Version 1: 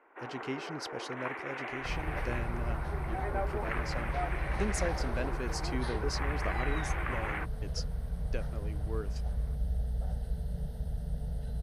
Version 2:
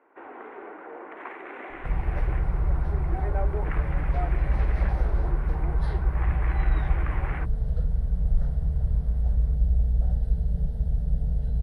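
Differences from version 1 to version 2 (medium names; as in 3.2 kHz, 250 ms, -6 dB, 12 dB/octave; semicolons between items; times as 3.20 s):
speech: muted; master: add tilt EQ -2.5 dB/octave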